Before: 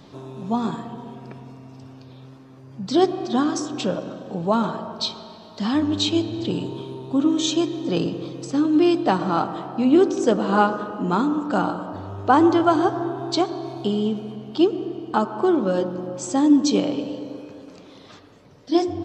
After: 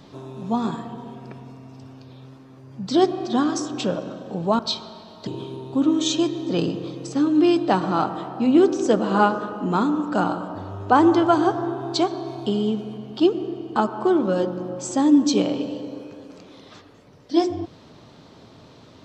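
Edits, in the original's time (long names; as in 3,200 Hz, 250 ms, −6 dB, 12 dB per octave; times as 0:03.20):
0:04.59–0:04.93: remove
0:05.61–0:06.65: remove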